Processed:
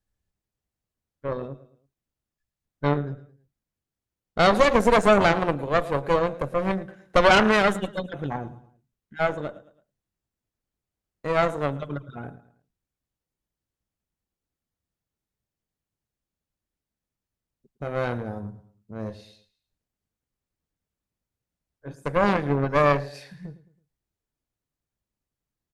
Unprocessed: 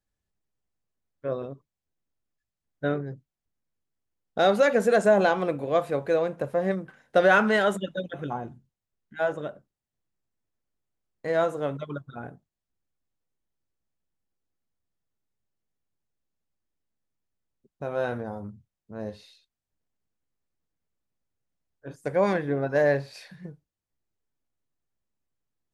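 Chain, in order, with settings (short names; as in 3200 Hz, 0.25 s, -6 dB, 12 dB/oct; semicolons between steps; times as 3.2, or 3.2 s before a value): low shelf 150 Hz +6 dB; feedback echo 0.109 s, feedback 39%, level -16 dB; added harmonics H 4 -8 dB, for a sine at -8 dBFS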